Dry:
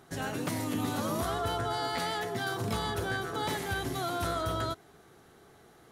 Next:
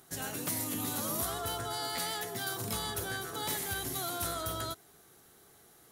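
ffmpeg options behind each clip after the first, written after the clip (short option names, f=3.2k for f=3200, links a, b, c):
-af "aemphasis=mode=production:type=75fm,volume=-5.5dB"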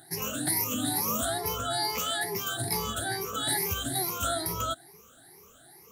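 -af "afftfilt=real='re*pow(10,23/40*sin(2*PI*(0.81*log(max(b,1)*sr/1024/100)/log(2)-(2.3)*(pts-256)/sr)))':imag='im*pow(10,23/40*sin(2*PI*(0.81*log(max(b,1)*sr/1024/100)/log(2)-(2.3)*(pts-256)/sr)))':win_size=1024:overlap=0.75"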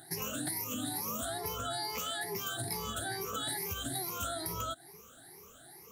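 -af "acompressor=threshold=-34dB:ratio=6"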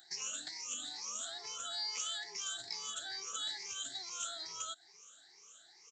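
-af "aresample=16000,aresample=44100,aderivative,volume=6dB"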